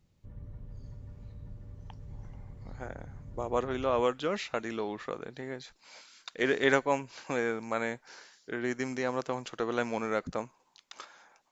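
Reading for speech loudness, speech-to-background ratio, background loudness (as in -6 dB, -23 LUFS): -32.5 LUFS, 16.0 dB, -48.5 LUFS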